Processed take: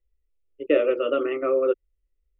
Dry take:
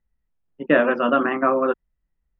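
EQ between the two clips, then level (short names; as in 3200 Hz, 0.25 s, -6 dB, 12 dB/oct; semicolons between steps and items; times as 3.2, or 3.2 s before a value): LPF 2700 Hz 6 dB/oct; fixed phaser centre 410 Hz, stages 4; fixed phaser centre 1100 Hz, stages 8; +2.5 dB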